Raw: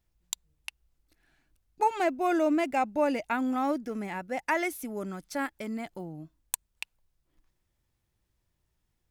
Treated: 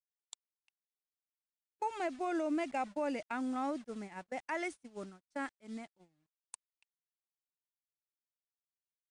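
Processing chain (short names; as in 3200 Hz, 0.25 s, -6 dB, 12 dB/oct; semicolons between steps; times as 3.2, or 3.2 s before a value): bit-crush 8-bit; gate -34 dBFS, range -29 dB; limiter -19.5 dBFS, peak gain reduction 6 dB; gain -7 dB; MP3 112 kbps 22050 Hz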